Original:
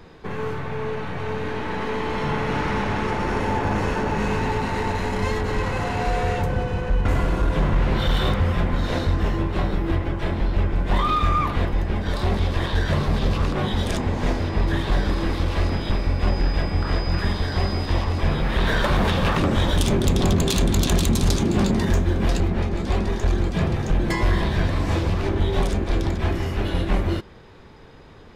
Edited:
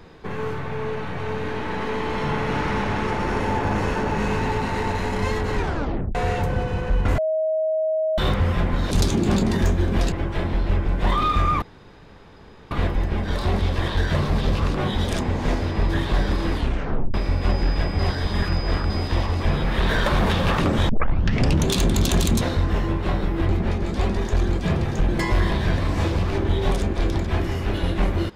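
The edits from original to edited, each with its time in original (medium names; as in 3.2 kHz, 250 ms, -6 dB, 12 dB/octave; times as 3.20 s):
5.56 s: tape stop 0.59 s
7.18–8.18 s: bleep 632 Hz -19 dBFS
8.91–9.99 s: swap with 21.19–22.40 s
11.49 s: insert room tone 1.09 s
15.31 s: tape stop 0.61 s
16.77–17.68 s: reverse
19.67 s: tape start 0.80 s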